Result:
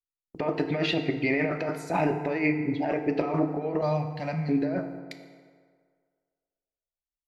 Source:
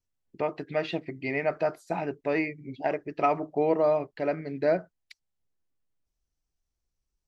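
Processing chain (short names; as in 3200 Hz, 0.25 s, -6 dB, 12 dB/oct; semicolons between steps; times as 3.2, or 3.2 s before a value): gate -52 dBFS, range -30 dB; 3.81–4.49 EQ curve 210 Hz 0 dB, 370 Hz -30 dB, 760 Hz -8 dB, 1400 Hz -13 dB, 5800 Hz 0 dB; negative-ratio compressor -32 dBFS, ratio -1; FDN reverb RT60 1.9 s, low-frequency decay 0.8×, high-frequency decay 0.55×, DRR 6 dB; gain +4.5 dB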